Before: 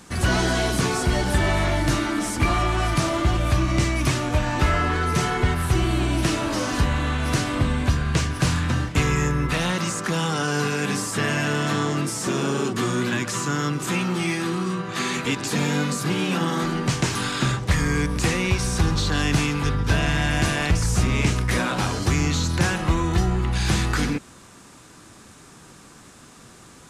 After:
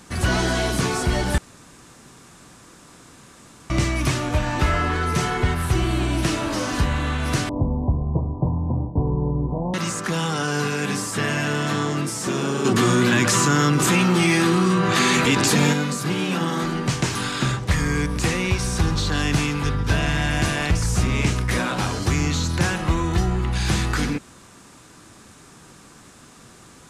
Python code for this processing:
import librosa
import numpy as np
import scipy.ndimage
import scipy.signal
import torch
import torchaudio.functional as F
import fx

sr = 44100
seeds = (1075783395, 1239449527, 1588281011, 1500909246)

y = fx.steep_lowpass(x, sr, hz=1000.0, slope=96, at=(7.49, 9.74))
y = fx.env_flatten(y, sr, amount_pct=70, at=(12.64, 15.72), fade=0.02)
y = fx.edit(y, sr, fx.room_tone_fill(start_s=1.38, length_s=2.32), tone=tone)